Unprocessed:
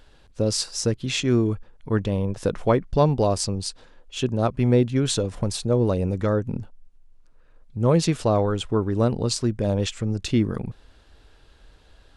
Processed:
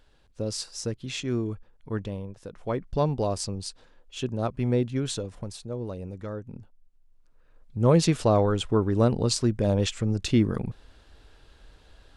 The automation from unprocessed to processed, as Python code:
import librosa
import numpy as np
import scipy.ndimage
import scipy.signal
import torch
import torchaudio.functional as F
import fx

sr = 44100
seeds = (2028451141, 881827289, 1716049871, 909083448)

y = fx.gain(x, sr, db=fx.line((2.05, -8.0), (2.49, -17.5), (2.83, -6.0), (4.98, -6.0), (5.63, -13.0), (6.52, -13.0), (7.87, -0.5)))